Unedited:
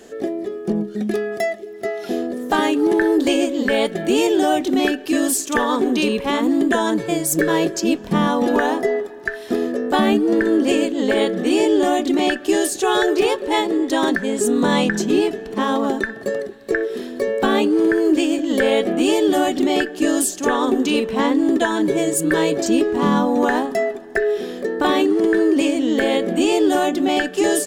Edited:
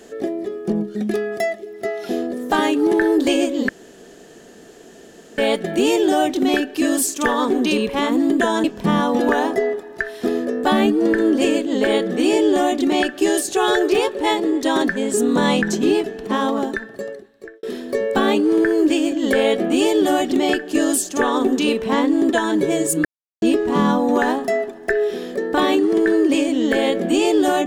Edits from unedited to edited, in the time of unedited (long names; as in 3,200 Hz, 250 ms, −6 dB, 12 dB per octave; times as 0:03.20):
0:03.69: splice in room tone 1.69 s
0:06.95–0:07.91: remove
0:15.67–0:16.90: fade out
0:22.32–0:22.69: silence